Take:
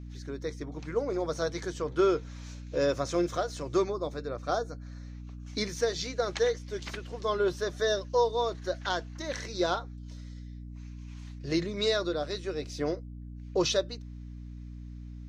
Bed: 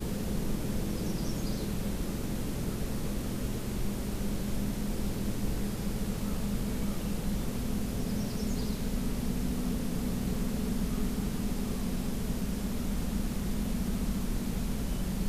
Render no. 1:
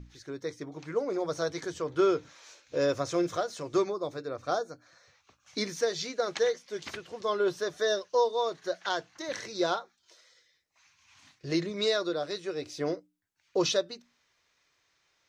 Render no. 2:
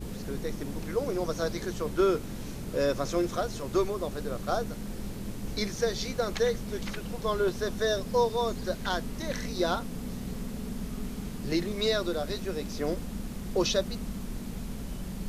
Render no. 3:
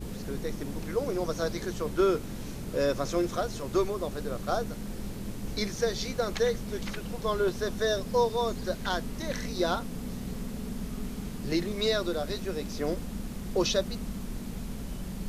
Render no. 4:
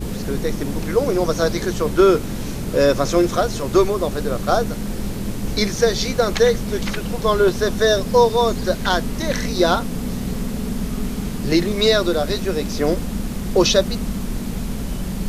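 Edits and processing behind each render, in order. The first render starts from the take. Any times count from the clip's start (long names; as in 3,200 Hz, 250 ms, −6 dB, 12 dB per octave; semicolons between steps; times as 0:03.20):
mains-hum notches 60/120/180/240/300 Hz
mix in bed −4.5 dB
no processing that can be heard
level +11.5 dB; brickwall limiter −3 dBFS, peak gain reduction 0.5 dB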